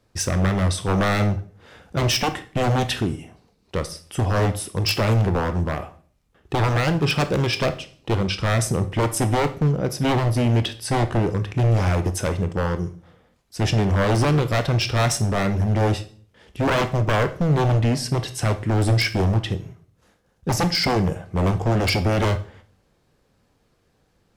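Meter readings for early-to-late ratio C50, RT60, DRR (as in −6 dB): 14.0 dB, 0.45 s, 9.5 dB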